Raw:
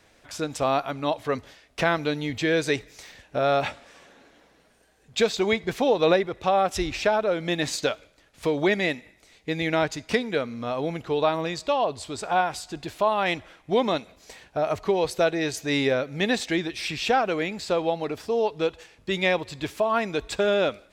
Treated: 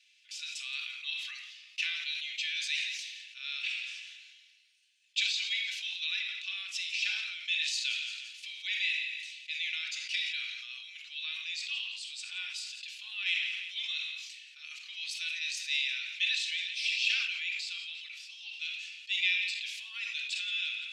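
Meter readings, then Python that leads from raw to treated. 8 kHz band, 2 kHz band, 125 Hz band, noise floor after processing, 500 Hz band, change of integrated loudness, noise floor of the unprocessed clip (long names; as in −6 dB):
−4.5 dB, −3.0 dB, below −40 dB, −59 dBFS, below −40 dB, −7.5 dB, −60 dBFS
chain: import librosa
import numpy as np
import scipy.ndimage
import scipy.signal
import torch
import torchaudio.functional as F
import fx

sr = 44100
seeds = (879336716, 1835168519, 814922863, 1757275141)

p1 = scipy.signal.sosfilt(scipy.signal.ellip(4, 1.0, 80, 2600.0, 'highpass', fs=sr, output='sos'), x)
p2 = fx.spacing_loss(p1, sr, db_at_10k=20)
p3 = p2 + fx.echo_feedback(p2, sr, ms=172, feedback_pct=38, wet_db=-18, dry=0)
p4 = fx.room_shoebox(p3, sr, seeds[0], volume_m3=3800.0, walls='furnished', distance_m=2.5)
p5 = fx.sustainer(p4, sr, db_per_s=35.0)
y = F.gain(torch.from_numpy(p5), 6.0).numpy()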